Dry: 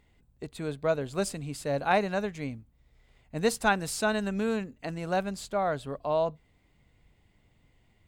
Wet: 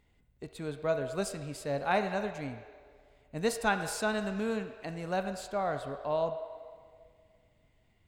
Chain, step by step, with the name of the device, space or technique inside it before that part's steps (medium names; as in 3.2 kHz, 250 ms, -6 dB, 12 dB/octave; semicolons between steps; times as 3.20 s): filtered reverb send (on a send: high-pass 410 Hz 24 dB/octave + low-pass 4.2 kHz 12 dB/octave + reverberation RT60 2.0 s, pre-delay 12 ms, DRR 7.5 dB); on the sum: trim -4 dB